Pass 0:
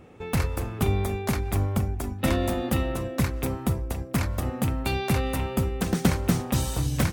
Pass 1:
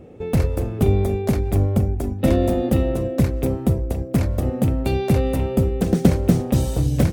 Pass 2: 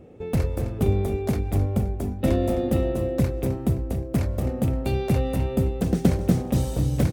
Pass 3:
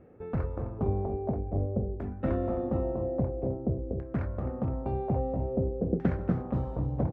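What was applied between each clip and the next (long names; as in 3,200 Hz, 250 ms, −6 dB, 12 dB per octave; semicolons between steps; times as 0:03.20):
low shelf with overshoot 760 Hz +8.5 dB, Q 1.5; level −2 dB
repeating echo 261 ms, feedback 43%, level −11 dB; level −4.5 dB
auto-filter low-pass saw down 0.5 Hz 460–1,700 Hz; level −8 dB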